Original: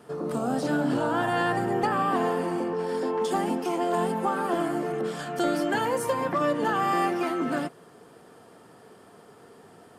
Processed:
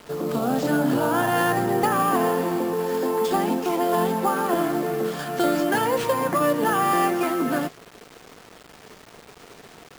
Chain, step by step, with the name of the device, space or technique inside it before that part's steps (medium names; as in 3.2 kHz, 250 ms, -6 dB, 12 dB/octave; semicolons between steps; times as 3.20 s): early 8-bit sampler (sample-rate reducer 12 kHz, jitter 0%; bit crusher 8-bit); trim +4 dB